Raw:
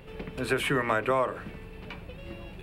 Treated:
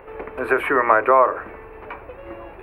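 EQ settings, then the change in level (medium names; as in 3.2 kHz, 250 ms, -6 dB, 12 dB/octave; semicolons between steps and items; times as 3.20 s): FFT filter 100 Hz 0 dB, 150 Hz -13 dB, 330 Hz +8 dB, 1.1 kHz +15 dB, 2.3 kHz +6 dB, 3.3 kHz -10 dB, 6.9 kHz -19 dB, 11 kHz -2 dB; -1.0 dB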